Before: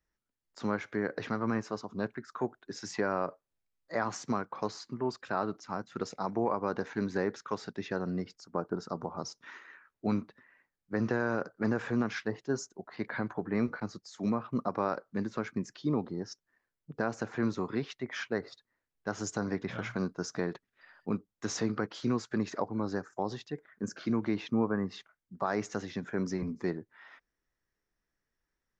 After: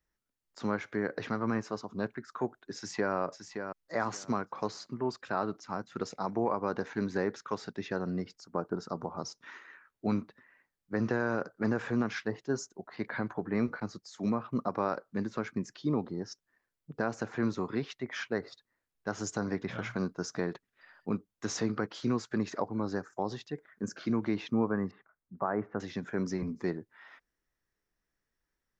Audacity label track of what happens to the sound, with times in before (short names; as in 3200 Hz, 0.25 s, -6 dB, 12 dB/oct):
2.750000	3.150000	echo throw 0.57 s, feedback 20%, level -7.5 dB
24.910000	25.800000	LPF 1600 Hz 24 dB/oct